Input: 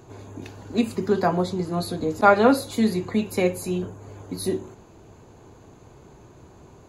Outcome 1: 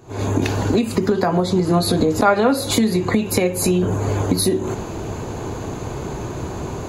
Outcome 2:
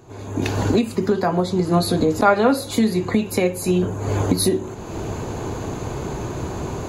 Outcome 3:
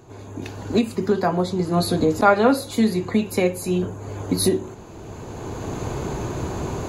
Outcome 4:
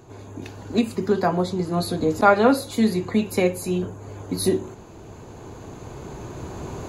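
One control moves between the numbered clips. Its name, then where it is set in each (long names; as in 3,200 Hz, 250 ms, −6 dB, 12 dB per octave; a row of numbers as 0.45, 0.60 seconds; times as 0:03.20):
camcorder AGC, rising by: 89, 36, 13, 5.1 dB per second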